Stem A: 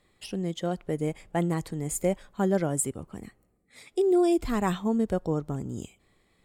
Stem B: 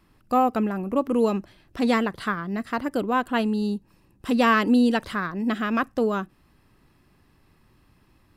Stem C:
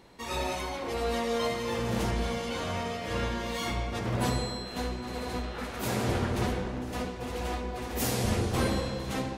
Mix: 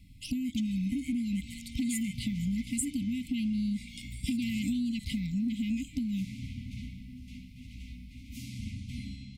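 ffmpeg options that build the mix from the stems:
-filter_complex "[0:a]highpass=1k,volume=-0.5dB[a];[1:a]equalizer=f=64:t=o:w=2.7:g=11.5,acompressor=threshold=-24dB:ratio=6,volume=0.5dB[b];[2:a]aemphasis=mode=reproduction:type=50kf,adelay=350,volume=-9.5dB[c];[a][b][c]amix=inputs=3:normalize=0,afftfilt=real='re*(1-between(b*sr/4096,300,2000))':imag='im*(1-between(b*sr/4096,300,2000))':win_size=4096:overlap=0.75,acompressor=threshold=-28dB:ratio=6"

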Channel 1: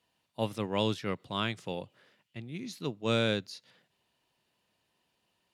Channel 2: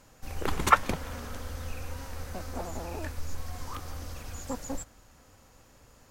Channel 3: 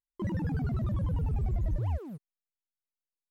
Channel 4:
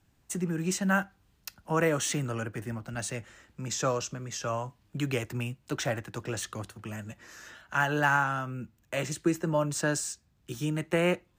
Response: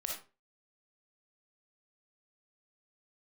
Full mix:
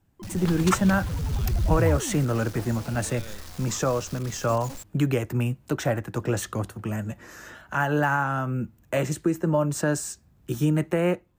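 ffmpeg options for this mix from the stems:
-filter_complex "[0:a]volume=-15.5dB[a];[1:a]equalizer=f=4.5k:t=o:w=1.7:g=9,acrusher=bits=5:mix=0:aa=0.000001,volume=-7dB[b];[2:a]dynaudnorm=f=880:g=3:m=16.5dB,volume=-8.5dB[c];[3:a]equalizer=f=4.1k:t=o:w=2.8:g=-9.5,dynaudnorm=f=170:g=5:m=8.5dB,alimiter=limit=-14.5dB:level=0:latency=1:release=391,volume=1.5dB[d];[a][b][c][d]amix=inputs=4:normalize=0"

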